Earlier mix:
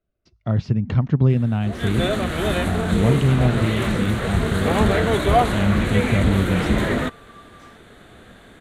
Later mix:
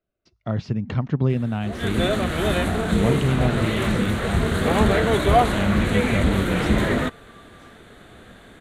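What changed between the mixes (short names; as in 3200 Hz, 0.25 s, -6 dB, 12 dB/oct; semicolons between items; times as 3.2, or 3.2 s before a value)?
speech: add low shelf 150 Hz -9 dB; second sound -5.0 dB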